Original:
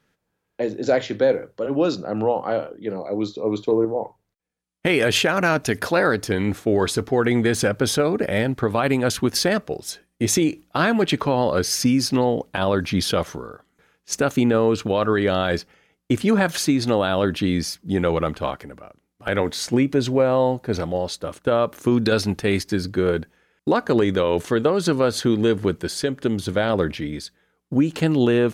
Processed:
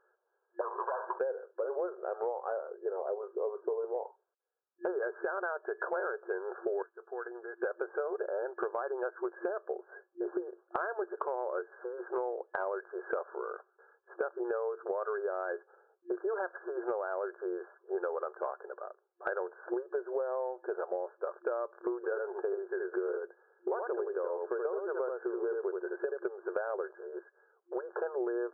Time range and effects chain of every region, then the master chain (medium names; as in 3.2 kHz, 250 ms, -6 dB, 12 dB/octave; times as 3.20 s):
0.61–1.19 s: waveshaping leveller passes 5 + band-pass filter 1 kHz, Q 6.7 + three bands compressed up and down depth 70%
6.82–7.62 s: pre-emphasis filter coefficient 0.9 + compression, threshold -32 dBFS
21.96–26.18 s: treble shelf 2.2 kHz -11 dB + delay 78 ms -4 dB
whole clip: FFT band-pass 350–1700 Hz; compression 12:1, threshold -31 dBFS